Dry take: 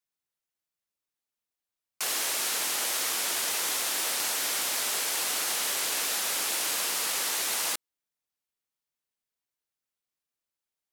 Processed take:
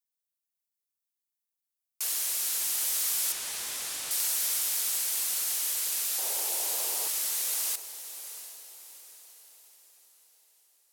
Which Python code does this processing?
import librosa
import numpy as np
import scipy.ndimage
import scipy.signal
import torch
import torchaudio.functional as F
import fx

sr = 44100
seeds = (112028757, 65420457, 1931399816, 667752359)

p1 = fx.delta_mod(x, sr, bps=64000, step_db=-38.5, at=(3.32, 4.11))
p2 = fx.band_shelf(p1, sr, hz=570.0, db=12.5, octaves=1.7, at=(6.18, 7.08))
p3 = fx.rider(p2, sr, range_db=10, speed_s=2.0)
p4 = scipy.signal.lfilter([1.0, -0.8], [1.0], p3)
y = p4 + fx.echo_diffused(p4, sr, ms=720, feedback_pct=43, wet_db=-12.0, dry=0)